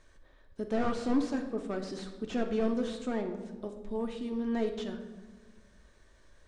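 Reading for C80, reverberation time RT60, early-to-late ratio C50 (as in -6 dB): 10.5 dB, 1.5 s, 8.5 dB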